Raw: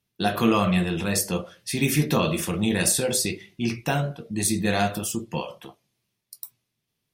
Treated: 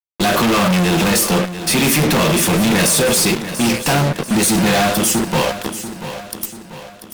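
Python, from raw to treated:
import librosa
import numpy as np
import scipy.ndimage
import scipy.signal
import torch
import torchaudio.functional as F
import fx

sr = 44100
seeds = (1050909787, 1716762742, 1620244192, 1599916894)

y = scipy.signal.sosfilt(scipy.signal.butter(4, 140.0, 'highpass', fs=sr, output='sos'), x)
y = fx.fuzz(y, sr, gain_db=43.0, gate_db=-38.0)
y = fx.echo_feedback(y, sr, ms=689, feedback_pct=48, wet_db=-12)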